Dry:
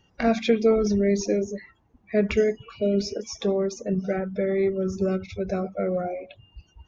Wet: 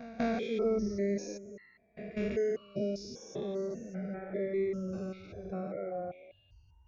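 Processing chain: stepped spectrum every 0.2 s; reverse echo 0.197 s -16 dB; reverb removal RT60 1.5 s; gain -5.5 dB

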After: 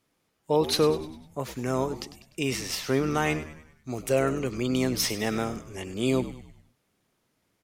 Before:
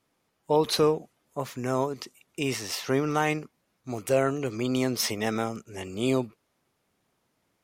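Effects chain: bell 860 Hz -3.5 dB 1.4 oct; on a send: frequency-shifting echo 0.1 s, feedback 48%, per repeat -73 Hz, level -13.5 dB; on the sum: gain +1 dB

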